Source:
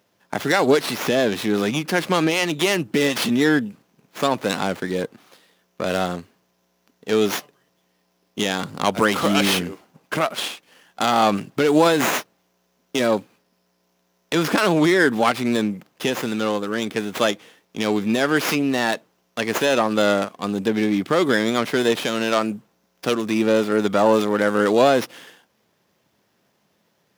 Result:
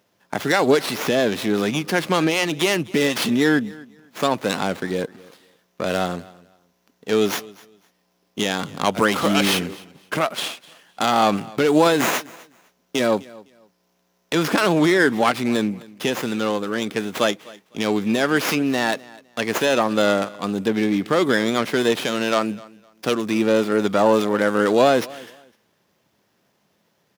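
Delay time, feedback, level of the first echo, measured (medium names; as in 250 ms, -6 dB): 254 ms, 23%, -22.0 dB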